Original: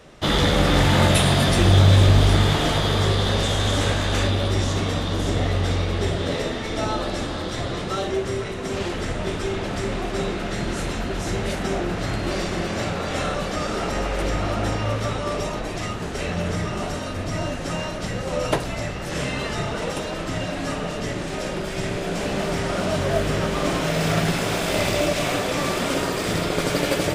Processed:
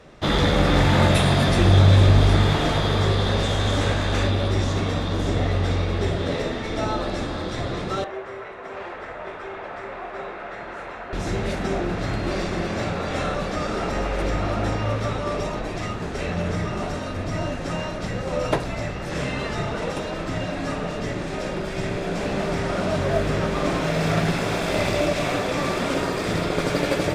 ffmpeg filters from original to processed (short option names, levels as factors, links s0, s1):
-filter_complex "[0:a]asettb=1/sr,asplit=3[s0][s1][s2];[s0]atrim=end=8.044[s3];[s1]atrim=start=8.04:end=11.13,asetpts=PTS-STARTPTS,afade=t=in:d=0.004:c=qsin,afade=t=out:st=3.086:d=0.004:c=qsin,acrossover=split=510 2300:gain=0.1 1 0.126[s4][s5][s6];[s4][s5][s6]amix=inputs=3:normalize=0[s7];[s2]atrim=start=11.126[s8];[s3][s7]acrossfade=d=0.004:c1=hsin:c2=qsin[s9];[s9][s8]acrossfade=d=0.004:c1=qsin:c2=hsin,lowpass=f=4000:p=1,bandreject=f=3000:w=16"